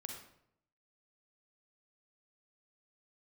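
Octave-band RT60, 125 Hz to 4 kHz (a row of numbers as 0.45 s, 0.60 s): 0.90 s, 0.80 s, 0.75 s, 0.70 s, 0.60 s, 0.50 s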